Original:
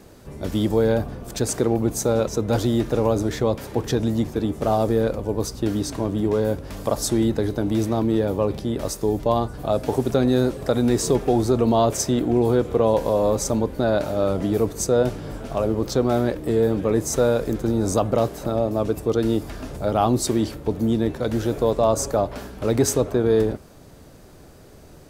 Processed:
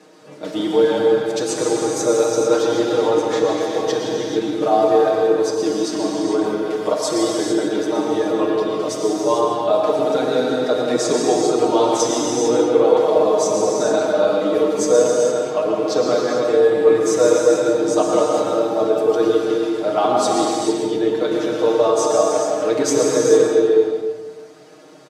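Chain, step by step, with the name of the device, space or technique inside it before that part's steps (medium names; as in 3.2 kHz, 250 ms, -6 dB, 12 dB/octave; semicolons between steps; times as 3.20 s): supermarket ceiling speaker (band-pass 310–6600 Hz; reverberation RT60 1.4 s, pre-delay 103 ms, DRR 1 dB); high-pass 110 Hz; reverb removal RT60 0.9 s; comb 6.5 ms, depth 93%; gated-style reverb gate 480 ms flat, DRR -1 dB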